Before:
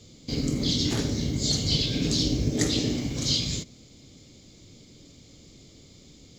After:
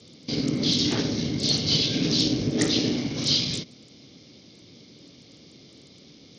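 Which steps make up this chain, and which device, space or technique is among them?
Bluetooth headset (HPF 150 Hz 12 dB/oct; downsampling 16000 Hz; gain +3 dB; SBC 64 kbps 48000 Hz)

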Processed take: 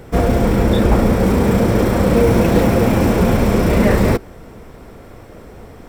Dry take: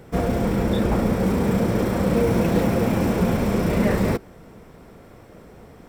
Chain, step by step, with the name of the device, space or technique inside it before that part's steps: low shelf boost with a cut just above (low shelf 66 Hz +6.5 dB; bell 170 Hz -4.5 dB 0.53 oct); gain +7 dB

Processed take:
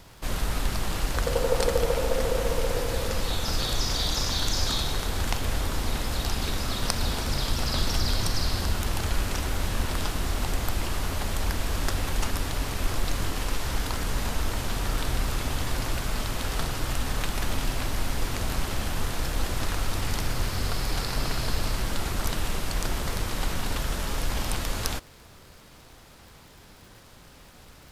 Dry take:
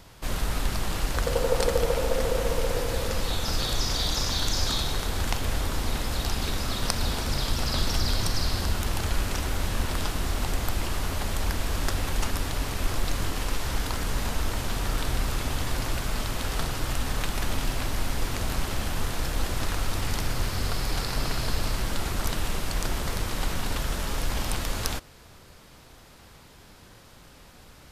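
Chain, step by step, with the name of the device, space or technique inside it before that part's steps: vinyl LP (crackle 59/s -41 dBFS; pink noise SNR 40 dB)

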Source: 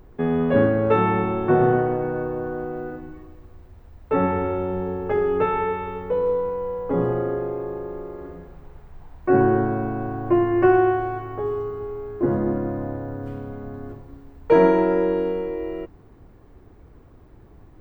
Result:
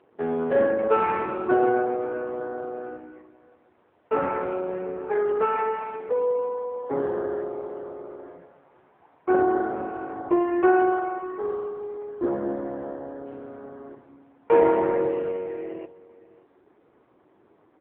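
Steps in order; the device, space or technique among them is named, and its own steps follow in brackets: satellite phone (BPF 350–3200 Hz; echo 0.589 s -20.5 dB; AMR-NB 5.9 kbps 8000 Hz)

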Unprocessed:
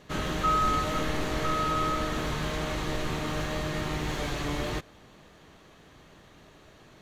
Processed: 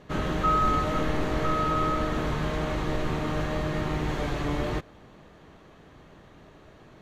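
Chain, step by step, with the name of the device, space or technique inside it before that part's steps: through cloth (high shelf 2600 Hz -11 dB); gain +3.5 dB

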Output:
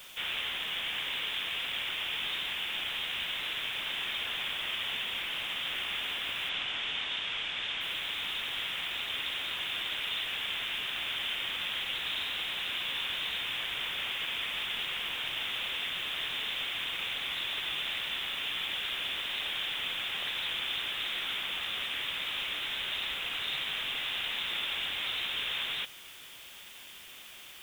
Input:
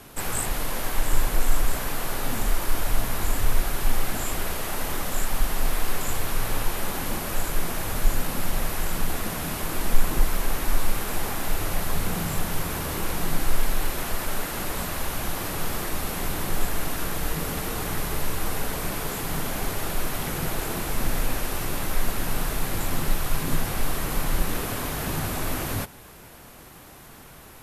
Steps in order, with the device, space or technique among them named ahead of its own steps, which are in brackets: scrambled radio voice (BPF 350–2800 Hz; inverted band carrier 3900 Hz; white noise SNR 18 dB); 6.49–7.81 LPF 7200 Hz 24 dB/oct

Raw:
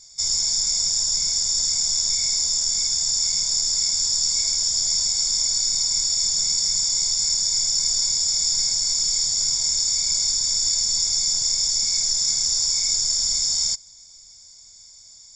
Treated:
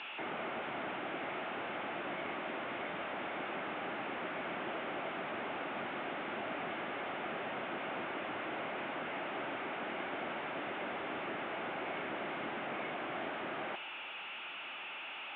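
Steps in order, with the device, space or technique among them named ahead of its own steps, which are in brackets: digital answering machine (BPF 350–3200 Hz; delta modulation 16 kbps, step -45 dBFS; speaker cabinet 390–4000 Hz, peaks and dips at 470 Hz -8 dB, 1000 Hz -6 dB, 1800 Hz -3 dB); gain +9.5 dB

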